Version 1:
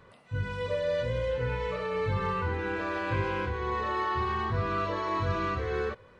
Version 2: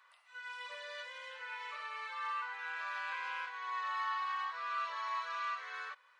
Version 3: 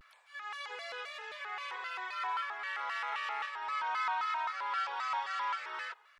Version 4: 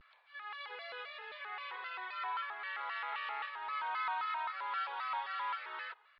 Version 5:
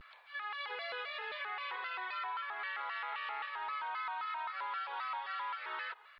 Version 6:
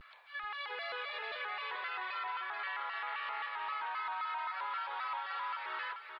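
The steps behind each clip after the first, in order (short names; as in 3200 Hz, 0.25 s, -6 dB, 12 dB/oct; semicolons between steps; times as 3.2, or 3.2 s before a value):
HPF 1000 Hz 24 dB/oct; gain -4 dB
shaped vibrato square 3.8 Hz, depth 250 cents; gain +3 dB
steep low-pass 4400 Hz 48 dB/oct; gain -3 dB
compressor, threshold -45 dBFS, peak gain reduction 11.5 dB; gain +7.5 dB
echo 0.434 s -6.5 dB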